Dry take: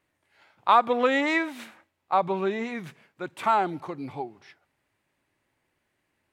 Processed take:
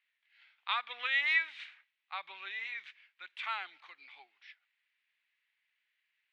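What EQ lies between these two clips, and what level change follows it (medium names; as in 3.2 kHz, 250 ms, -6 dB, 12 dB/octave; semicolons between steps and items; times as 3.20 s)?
Butterworth band-pass 2.7 kHz, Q 1.3; 0.0 dB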